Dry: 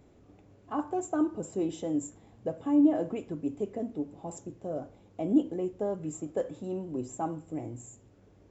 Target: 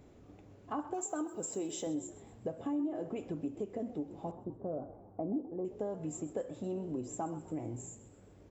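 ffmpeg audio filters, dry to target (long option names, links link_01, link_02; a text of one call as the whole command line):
ffmpeg -i in.wav -filter_complex "[0:a]asettb=1/sr,asplit=3[link_01][link_02][link_03];[link_01]atrim=end=0.944[link_04];[link_02]atrim=start=0.94:end=1.87,asetpts=PTS-STARTPTS,afade=type=in:duration=0.004:curve=qsin,afade=type=out:start_time=0.926:duration=0.004:curve=qsin,aemphasis=mode=production:type=bsi[link_05];[link_03]atrim=start=1.866[link_06];[link_04][link_05]acrossfade=duration=0.004:curve1=hsin:curve2=qsin[link_07];[link_07][link_06]acrossfade=duration=0.004:curve1=qsin:curve2=hsin,asettb=1/sr,asplit=3[link_08][link_09][link_10];[link_08]atrim=end=4.314[link_11];[link_09]atrim=start=4.31:end=5.65,asetpts=PTS-STARTPTS,afade=type=in:duration=0.004:curve=qsin,afade=type=out:start_time=1.336:duration=0.004:curve=qsin,lowpass=frequency=1200:width=0.5412,lowpass=frequency=1200:width=1.3066[link_12];[link_10]atrim=start=5.646[link_13];[link_11][link_12]acrossfade=duration=0.004:curve1=hsin:curve2=qsin[link_14];[link_14][link_13]acrossfade=duration=0.004:curve1=qsin:curve2=hsin,acompressor=threshold=-36dB:ratio=4,asplit=5[link_15][link_16][link_17][link_18][link_19];[link_16]adelay=128,afreqshift=53,volume=-16dB[link_20];[link_17]adelay=256,afreqshift=106,volume=-23.3dB[link_21];[link_18]adelay=384,afreqshift=159,volume=-30.7dB[link_22];[link_19]adelay=512,afreqshift=212,volume=-38dB[link_23];[link_15][link_20][link_21][link_22][link_23]amix=inputs=5:normalize=0,volume=1dB" out.wav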